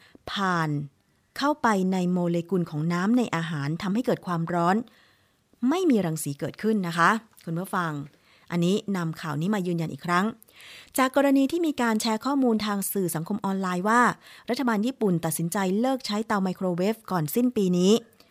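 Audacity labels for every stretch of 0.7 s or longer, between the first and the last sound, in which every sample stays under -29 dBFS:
4.820000	5.630000	silence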